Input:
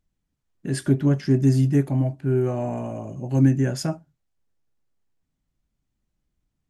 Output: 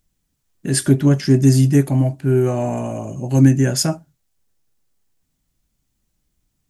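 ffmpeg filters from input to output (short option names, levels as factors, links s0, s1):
-af "highshelf=f=4300:g=11.5,volume=1.88"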